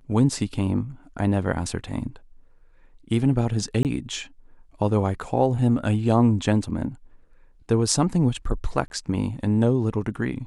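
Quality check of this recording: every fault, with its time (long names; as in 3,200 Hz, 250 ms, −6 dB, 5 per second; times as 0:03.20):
0:03.83–0:03.85: drop-out 18 ms
0:08.88–0:08.90: drop-out 21 ms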